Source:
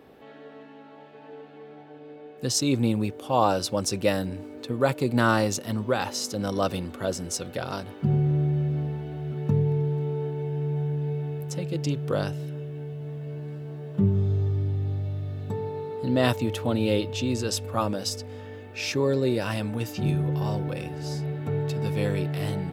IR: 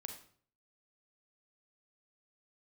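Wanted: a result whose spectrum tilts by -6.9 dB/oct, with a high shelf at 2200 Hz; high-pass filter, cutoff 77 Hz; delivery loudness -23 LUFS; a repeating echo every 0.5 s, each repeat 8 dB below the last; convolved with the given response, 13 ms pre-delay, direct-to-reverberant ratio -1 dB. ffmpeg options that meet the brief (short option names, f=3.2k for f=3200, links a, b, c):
-filter_complex "[0:a]highpass=77,highshelf=f=2.2k:g=-8,aecho=1:1:500|1000|1500|2000|2500:0.398|0.159|0.0637|0.0255|0.0102,asplit=2[a][b];[1:a]atrim=start_sample=2205,adelay=13[c];[b][c]afir=irnorm=-1:irlink=0,volume=4.5dB[d];[a][d]amix=inputs=2:normalize=0,volume=1.5dB"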